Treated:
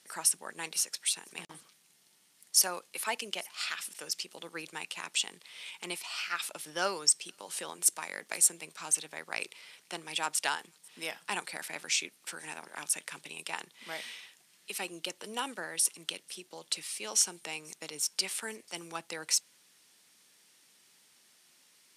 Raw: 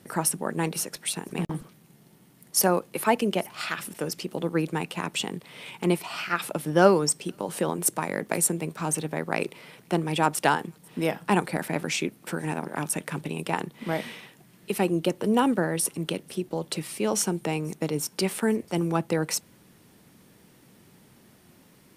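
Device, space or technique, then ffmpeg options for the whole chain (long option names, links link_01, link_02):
piezo pickup straight into a mixer: -af "lowpass=6500,aderivative,volume=6dB"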